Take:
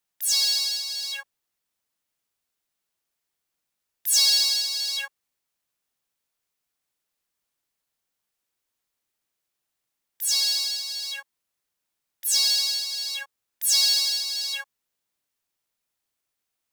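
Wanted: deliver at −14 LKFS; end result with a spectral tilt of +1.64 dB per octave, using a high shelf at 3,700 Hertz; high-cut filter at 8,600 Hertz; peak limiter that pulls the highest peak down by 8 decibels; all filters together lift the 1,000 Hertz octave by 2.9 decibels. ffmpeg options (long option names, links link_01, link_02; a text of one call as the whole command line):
ffmpeg -i in.wav -af "lowpass=8600,equalizer=frequency=1000:width_type=o:gain=3,highshelf=frequency=3700:gain=6,volume=7.5dB,alimiter=limit=-5.5dB:level=0:latency=1" out.wav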